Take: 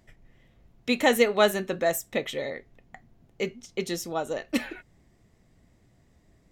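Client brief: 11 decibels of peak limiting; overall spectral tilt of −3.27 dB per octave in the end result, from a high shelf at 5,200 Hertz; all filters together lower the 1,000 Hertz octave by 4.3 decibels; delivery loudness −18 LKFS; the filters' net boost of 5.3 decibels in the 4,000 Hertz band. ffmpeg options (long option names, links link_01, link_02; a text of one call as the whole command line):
ffmpeg -i in.wav -af "equalizer=frequency=1000:width_type=o:gain=-6.5,equalizer=frequency=4000:width_type=o:gain=8.5,highshelf=frequency=5200:gain=-4.5,volume=14dB,alimiter=limit=-5dB:level=0:latency=1" out.wav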